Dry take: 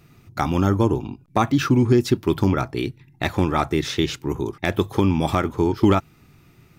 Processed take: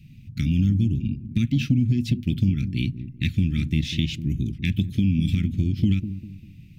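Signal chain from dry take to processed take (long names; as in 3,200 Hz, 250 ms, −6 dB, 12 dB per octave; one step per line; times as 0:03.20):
elliptic band-stop filter 230–2,600 Hz, stop band 60 dB
bass and treble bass +3 dB, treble −12 dB
downward compressor 3 to 1, threshold −23 dBFS, peak gain reduction 8 dB
delay with a low-pass on its return 198 ms, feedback 36%, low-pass 620 Hz, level −10.5 dB
level +4.5 dB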